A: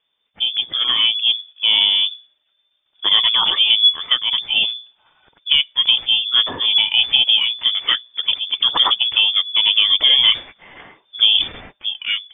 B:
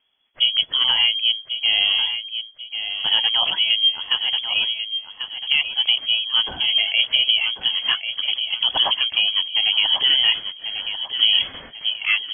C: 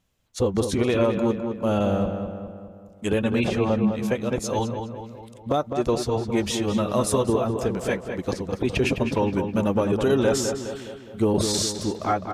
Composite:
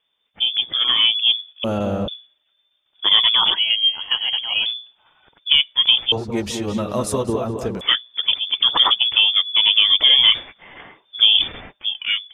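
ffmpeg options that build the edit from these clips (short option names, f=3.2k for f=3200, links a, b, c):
-filter_complex "[2:a]asplit=2[a][b];[0:a]asplit=4[c][d][e][f];[c]atrim=end=1.642[g];[a]atrim=start=1.638:end=2.082[h];[d]atrim=start=2.078:end=3.542[i];[1:a]atrim=start=3.538:end=4.662[j];[e]atrim=start=4.658:end=6.122[k];[b]atrim=start=6.118:end=7.812[l];[f]atrim=start=7.808[m];[g][h]acrossfade=d=0.004:c1=hsin:c2=hsin[n];[n][i]acrossfade=d=0.004:c1=hsin:c2=hsin[o];[o][j]acrossfade=d=0.004:c1=hsin:c2=hsin[p];[p][k]acrossfade=d=0.004:c1=hsin:c2=hsin[q];[q][l]acrossfade=d=0.004:c1=hsin:c2=hsin[r];[r][m]acrossfade=d=0.004:c1=hsin:c2=hsin"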